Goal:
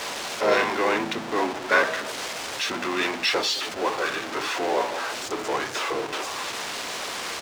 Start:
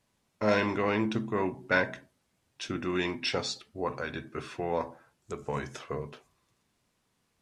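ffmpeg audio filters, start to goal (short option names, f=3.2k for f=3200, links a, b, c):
-filter_complex "[0:a]aeval=exprs='val(0)+0.5*0.0422*sgn(val(0))':c=same,acrossover=split=380 7700:gain=0.0708 1 0.2[a][b][c];[a][b][c]amix=inputs=3:normalize=0,asplit=2[d][e];[e]asetrate=33038,aresample=44100,atempo=1.33484,volume=-5dB[f];[d][f]amix=inputs=2:normalize=0,volume=4dB"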